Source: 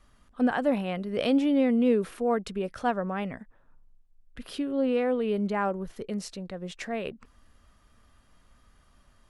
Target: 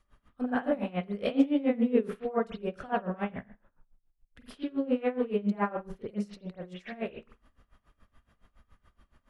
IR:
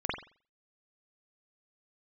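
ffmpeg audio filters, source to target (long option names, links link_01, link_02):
-filter_complex "[1:a]atrim=start_sample=2205[link_01];[0:a][link_01]afir=irnorm=-1:irlink=0,aeval=exprs='val(0)*pow(10,-20*(0.5-0.5*cos(2*PI*7.1*n/s))/20)':channel_layout=same,volume=-6dB"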